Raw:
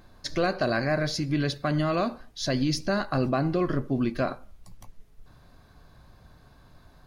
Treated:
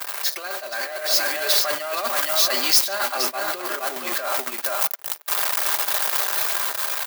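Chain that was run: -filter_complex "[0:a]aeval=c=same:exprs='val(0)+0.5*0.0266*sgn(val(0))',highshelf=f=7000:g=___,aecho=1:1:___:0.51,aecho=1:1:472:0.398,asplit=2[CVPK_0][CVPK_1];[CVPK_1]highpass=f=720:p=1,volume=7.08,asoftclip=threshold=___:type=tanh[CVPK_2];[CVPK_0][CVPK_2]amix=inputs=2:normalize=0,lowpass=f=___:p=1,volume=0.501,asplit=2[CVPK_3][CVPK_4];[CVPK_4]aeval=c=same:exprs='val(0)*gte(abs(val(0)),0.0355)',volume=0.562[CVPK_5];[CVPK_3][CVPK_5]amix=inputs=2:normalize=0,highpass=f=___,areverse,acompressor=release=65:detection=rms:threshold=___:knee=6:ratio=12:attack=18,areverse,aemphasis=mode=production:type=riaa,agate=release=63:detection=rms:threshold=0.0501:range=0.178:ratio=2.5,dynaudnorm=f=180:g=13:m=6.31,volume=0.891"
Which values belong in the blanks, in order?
6, 5, 0.335, 1200, 550, 0.0398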